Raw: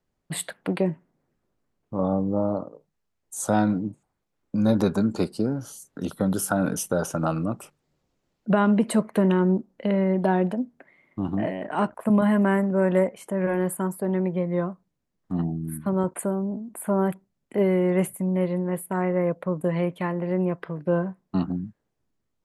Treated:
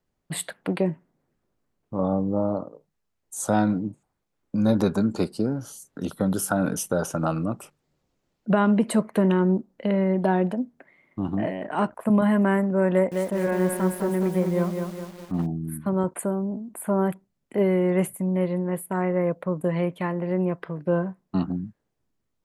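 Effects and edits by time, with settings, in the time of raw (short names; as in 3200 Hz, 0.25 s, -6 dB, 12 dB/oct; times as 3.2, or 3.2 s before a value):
12.91–15.48 lo-fi delay 0.206 s, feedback 55%, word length 7-bit, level -5 dB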